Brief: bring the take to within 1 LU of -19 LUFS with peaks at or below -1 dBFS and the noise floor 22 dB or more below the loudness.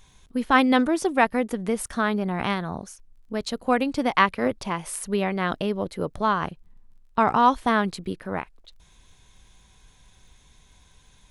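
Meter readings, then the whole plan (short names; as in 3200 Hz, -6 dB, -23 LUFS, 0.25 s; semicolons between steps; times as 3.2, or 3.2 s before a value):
ticks 18/s; loudness -24.5 LUFS; peak -4.5 dBFS; loudness target -19.0 LUFS
-> de-click; gain +5.5 dB; limiter -1 dBFS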